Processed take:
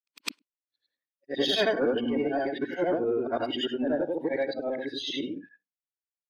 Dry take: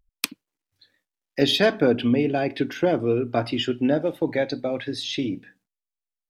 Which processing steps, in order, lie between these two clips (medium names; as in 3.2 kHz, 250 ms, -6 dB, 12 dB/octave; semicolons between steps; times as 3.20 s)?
short-time spectra conjugated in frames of 210 ms; band-pass 280–7800 Hz; in parallel at -3.5 dB: hard clipper -27 dBFS, distortion -7 dB; on the sum: spectral noise reduction 18 dB; trim -3.5 dB